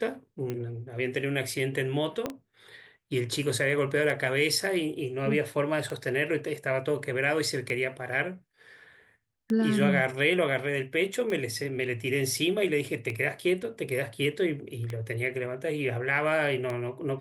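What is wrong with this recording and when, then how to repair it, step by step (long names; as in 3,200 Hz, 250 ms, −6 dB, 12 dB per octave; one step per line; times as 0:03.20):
scratch tick 33 1/3 rpm −20 dBFS
0:02.26: click −16 dBFS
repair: click removal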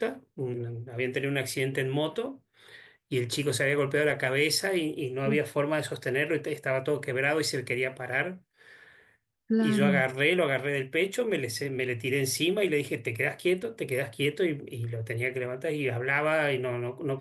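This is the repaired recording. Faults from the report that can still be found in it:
0:02.26: click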